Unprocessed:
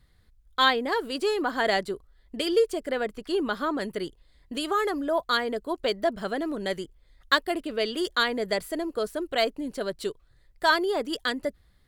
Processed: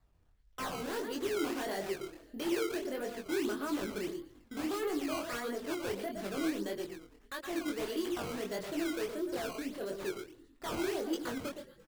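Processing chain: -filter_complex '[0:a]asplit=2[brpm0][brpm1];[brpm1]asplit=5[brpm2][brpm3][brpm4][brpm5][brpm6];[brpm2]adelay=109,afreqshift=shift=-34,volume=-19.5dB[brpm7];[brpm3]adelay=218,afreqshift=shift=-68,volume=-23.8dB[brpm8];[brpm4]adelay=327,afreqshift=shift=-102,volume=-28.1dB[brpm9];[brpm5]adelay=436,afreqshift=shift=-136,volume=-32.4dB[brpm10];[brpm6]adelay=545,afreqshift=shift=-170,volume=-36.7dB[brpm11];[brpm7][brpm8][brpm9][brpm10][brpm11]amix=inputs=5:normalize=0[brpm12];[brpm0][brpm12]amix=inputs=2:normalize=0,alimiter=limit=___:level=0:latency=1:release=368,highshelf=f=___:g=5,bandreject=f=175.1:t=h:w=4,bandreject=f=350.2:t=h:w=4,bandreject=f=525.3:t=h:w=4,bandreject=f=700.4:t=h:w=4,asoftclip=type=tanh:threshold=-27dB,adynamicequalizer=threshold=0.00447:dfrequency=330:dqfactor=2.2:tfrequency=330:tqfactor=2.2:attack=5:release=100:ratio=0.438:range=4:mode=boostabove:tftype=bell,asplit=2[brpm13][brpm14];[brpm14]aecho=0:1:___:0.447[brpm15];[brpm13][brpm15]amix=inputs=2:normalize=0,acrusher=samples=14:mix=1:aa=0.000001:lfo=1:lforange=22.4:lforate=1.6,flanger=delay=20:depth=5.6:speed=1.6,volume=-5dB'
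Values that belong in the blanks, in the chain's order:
-14dB, 9100, 118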